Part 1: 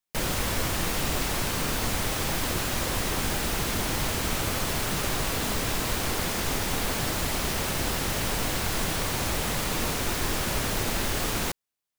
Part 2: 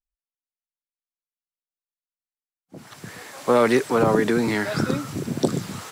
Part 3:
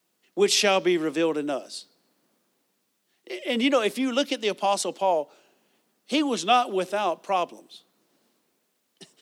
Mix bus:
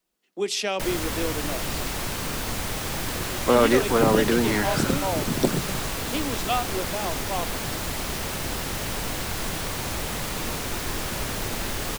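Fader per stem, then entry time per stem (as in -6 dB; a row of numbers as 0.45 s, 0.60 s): -1.5 dB, -1.0 dB, -6.0 dB; 0.65 s, 0.00 s, 0.00 s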